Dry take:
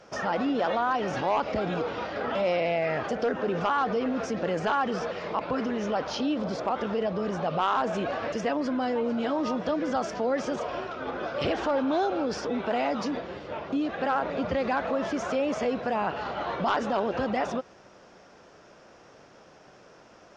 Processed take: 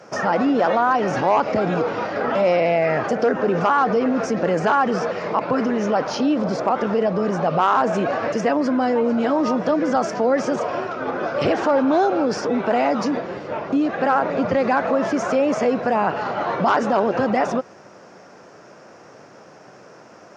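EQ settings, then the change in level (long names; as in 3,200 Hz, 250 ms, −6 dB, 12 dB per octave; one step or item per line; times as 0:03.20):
high-pass filter 100 Hz 24 dB per octave
parametric band 3,400 Hz −8 dB 0.74 octaves
+8.5 dB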